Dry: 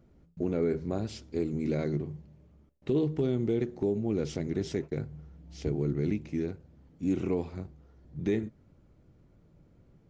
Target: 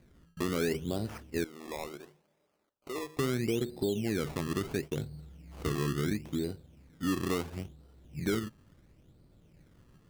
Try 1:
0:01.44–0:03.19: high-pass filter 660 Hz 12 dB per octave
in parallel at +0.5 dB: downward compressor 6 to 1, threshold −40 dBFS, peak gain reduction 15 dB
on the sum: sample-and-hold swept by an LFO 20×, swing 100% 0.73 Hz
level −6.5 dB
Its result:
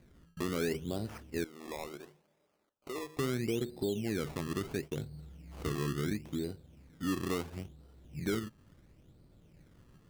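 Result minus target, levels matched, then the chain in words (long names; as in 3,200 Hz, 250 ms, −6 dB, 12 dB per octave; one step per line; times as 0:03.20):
downward compressor: peak gain reduction +9.5 dB
0:01.44–0:03.19: high-pass filter 660 Hz 12 dB per octave
in parallel at +0.5 dB: downward compressor 6 to 1, threshold −28.5 dBFS, peak gain reduction 5.5 dB
on the sum: sample-and-hold swept by an LFO 20×, swing 100% 0.73 Hz
level −6.5 dB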